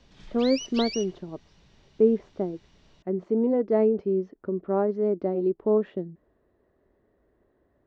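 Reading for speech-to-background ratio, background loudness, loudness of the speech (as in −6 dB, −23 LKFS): 9.0 dB, −35.0 LKFS, −26.0 LKFS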